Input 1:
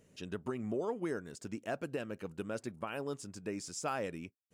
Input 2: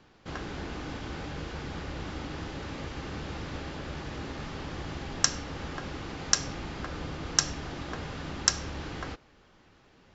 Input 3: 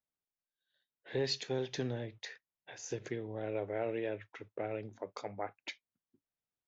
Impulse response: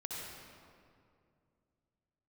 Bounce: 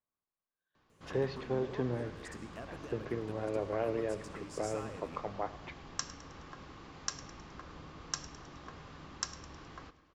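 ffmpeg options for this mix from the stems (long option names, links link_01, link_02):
-filter_complex "[0:a]acompressor=threshold=-42dB:ratio=6,adelay=900,volume=-5dB,asplit=2[link_01][link_02];[link_02]volume=-4.5dB[link_03];[1:a]adelay=750,volume=-14dB,asplit=3[link_04][link_05][link_06];[link_05]volume=-18.5dB[link_07];[link_06]volume=-16.5dB[link_08];[2:a]lowpass=1600,volume=2dB,asplit=2[link_09][link_10];[link_10]volume=-17.5dB[link_11];[3:a]atrim=start_sample=2205[link_12];[link_03][link_07]amix=inputs=2:normalize=0[link_13];[link_13][link_12]afir=irnorm=-1:irlink=0[link_14];[link_08][link_11]amix=inputs=2:normalize=0,aecho=0:1:105|210|315|420|525|630|735|840:1|0.52|0.27|0.141|0.0731|0.038|0.0198|0.0103[link_15];[link_01][link_04][link_09][link_14][link_15]amix=inputs=5:normalize=0,equalizer=frequency=1100:width_type=o:width=0.26:gain=9"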